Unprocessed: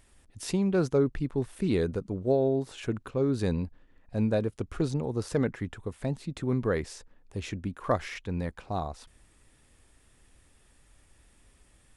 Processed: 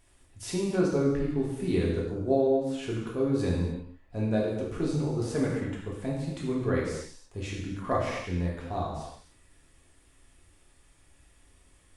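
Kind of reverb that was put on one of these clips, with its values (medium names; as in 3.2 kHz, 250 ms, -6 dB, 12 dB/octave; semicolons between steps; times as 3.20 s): gated-style reverb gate 340 ms falling, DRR -4.5 dB; trim -5 dB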